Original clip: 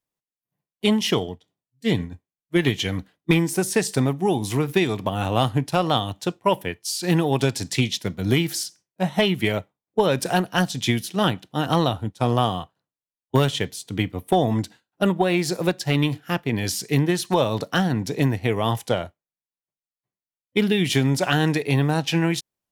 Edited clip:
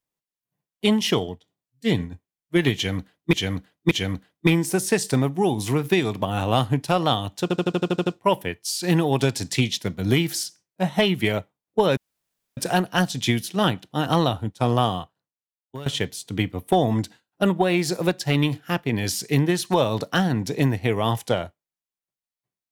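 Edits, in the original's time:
2.75–3.33 loop, 3 plays
6.26 stutter 0.08 s, 9 plays
10.17 insert room tone 0.60 s
12.55–13.46 fade out quadratic, to -17.5 dB

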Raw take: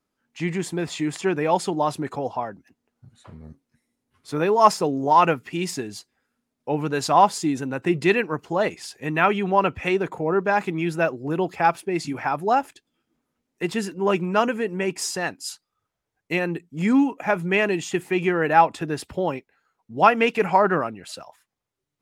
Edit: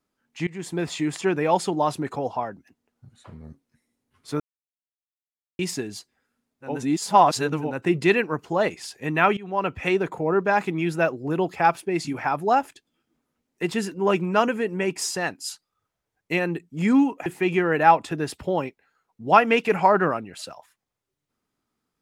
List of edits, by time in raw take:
0.47–0.79 fade in, from -22.5 dB
4.4–5.59 mute
6.72–7.68 reverse, crossfade 0.24 s
9.37–9.85 fade in linear, from -20 dB
17.26–17.96 cut

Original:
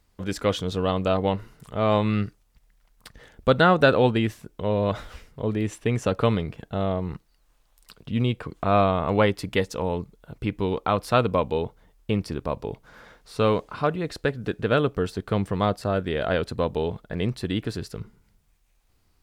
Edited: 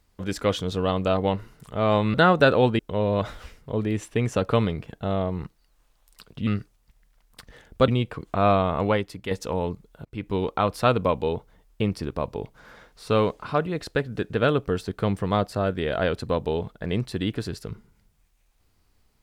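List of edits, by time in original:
2.14–3.55 move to 8.17
4.2–4.49 cut
9.08–9.6 fade out quadratic, to -8 dB
10.34–10.65 fade in, from -18.5 dB

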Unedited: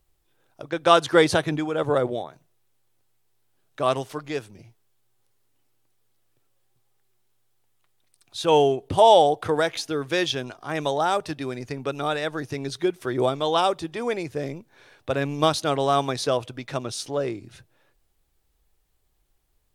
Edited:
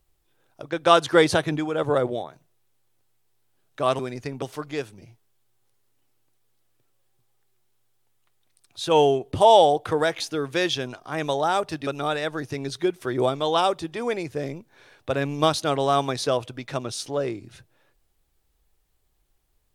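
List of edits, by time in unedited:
11.44–11.87 move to 3.99

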